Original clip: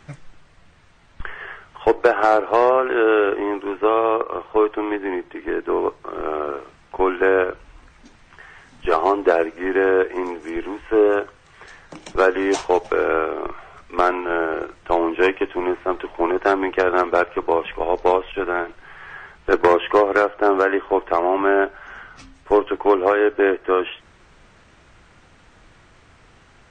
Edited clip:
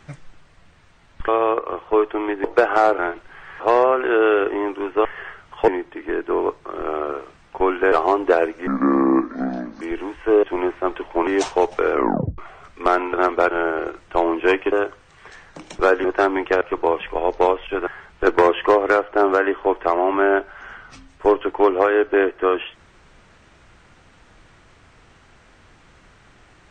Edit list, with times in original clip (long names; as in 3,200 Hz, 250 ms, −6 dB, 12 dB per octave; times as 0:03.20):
0:01.28–0:01.91: swap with 0:03.91–0:05.07
0:07.31–0:08.90: remove
0:09.65–0:10.46: play speed 71%
0:11.08–0:12.40: swap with 0:15.47–0:16.31
0:13.06: tape stop 0.45 s
0:16.88–0:17.26: move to 0:14.26
0:18.52–0:19.13: move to 0:02.46